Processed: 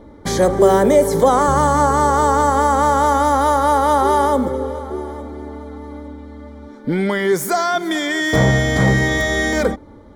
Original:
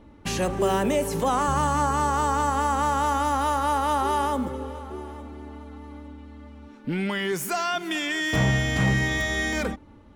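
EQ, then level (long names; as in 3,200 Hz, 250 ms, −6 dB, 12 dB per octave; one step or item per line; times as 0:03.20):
Butterworth band-reject 2,700 Hz, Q 3.2
parametric band 490 Hz +7.5 dB 1 octave
+6.5 dB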